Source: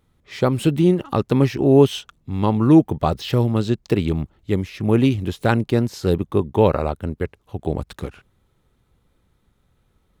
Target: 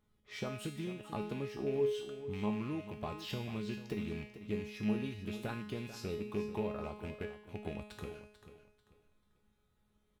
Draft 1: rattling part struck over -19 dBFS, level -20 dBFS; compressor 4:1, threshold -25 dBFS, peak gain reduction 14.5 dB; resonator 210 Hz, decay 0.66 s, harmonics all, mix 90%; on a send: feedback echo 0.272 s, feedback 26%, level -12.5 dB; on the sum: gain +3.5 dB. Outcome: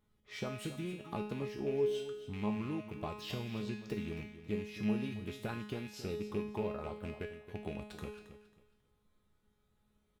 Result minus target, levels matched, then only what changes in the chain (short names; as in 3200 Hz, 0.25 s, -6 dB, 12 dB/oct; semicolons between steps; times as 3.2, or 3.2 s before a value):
echo 0.169 s early
change: feedback echo 0.441 s, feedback 26%, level -12.5 dB